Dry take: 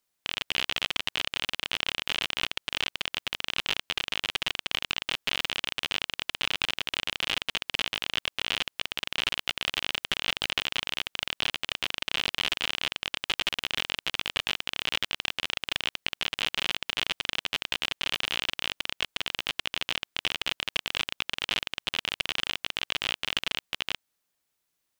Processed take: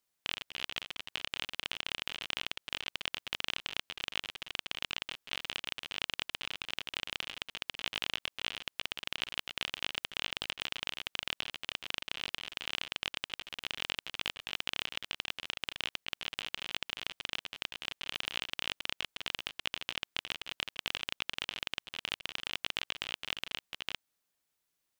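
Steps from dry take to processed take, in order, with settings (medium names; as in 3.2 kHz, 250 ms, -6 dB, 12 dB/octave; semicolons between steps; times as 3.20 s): compressor with a negative ratio -33 dBFS, ratio -0.5; trim -5.5 dB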